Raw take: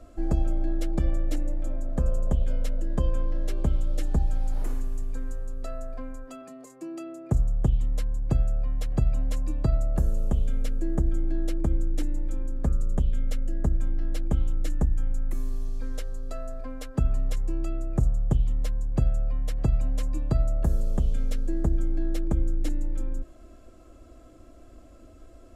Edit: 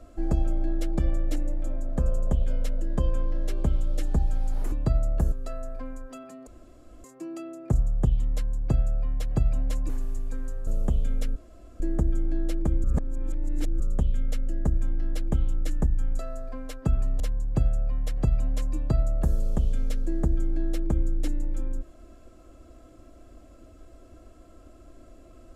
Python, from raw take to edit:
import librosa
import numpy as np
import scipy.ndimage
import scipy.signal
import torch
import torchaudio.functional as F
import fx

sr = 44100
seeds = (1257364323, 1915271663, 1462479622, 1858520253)

y = fx.edit(x, sr, fx.swap(start_s=4.72, length_s=0.78, other_s=9.5, other_length_s=0.6),
    fx.insert_room_tone(at_s=6.65, length_s=0.57),
    fx.insert_room_tone(at_s=10.79, length_s=0.44),
    fx.reverse_span(start_s=11.83, length_s=0.96),
    fx.cut(start_s=15.18, length_s=1.13),
    fx.cut(start_s=17.32, length_s=1.29), tone=tone)